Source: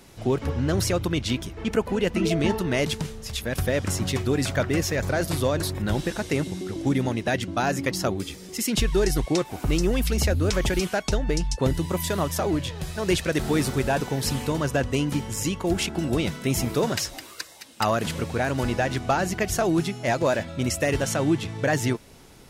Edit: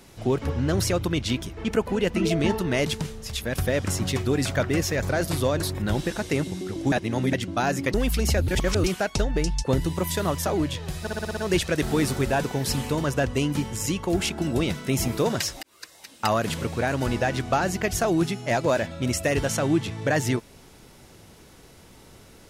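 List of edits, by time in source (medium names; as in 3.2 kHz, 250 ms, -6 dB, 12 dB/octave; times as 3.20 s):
6.92–7.33 s: reverse
7.94–9.87 s: delete
10.41–10.77 s: reverse
12.94 s: stutter 0.06 s, 7 plays
17.20–17.68 s: fade in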